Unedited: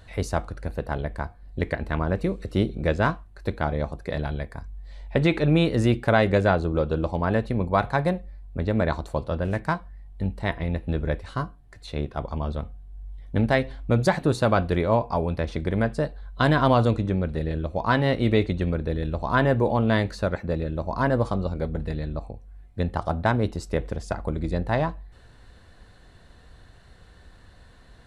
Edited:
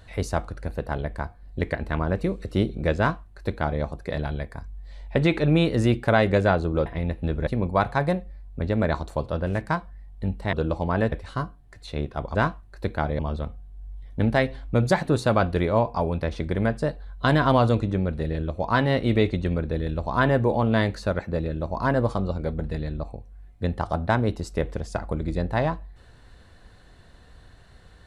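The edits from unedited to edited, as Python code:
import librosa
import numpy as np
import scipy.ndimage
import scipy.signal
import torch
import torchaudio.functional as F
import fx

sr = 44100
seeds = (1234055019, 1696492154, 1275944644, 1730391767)

y = fx.edit(x, sr, fx.duplicate(start_s=2.98, length_s=0.84, to_s=12.35),
    fx.swap(start_s=6.86, length_s=0.59, other_s=10.51, other_length_s=0.61), tone=tone)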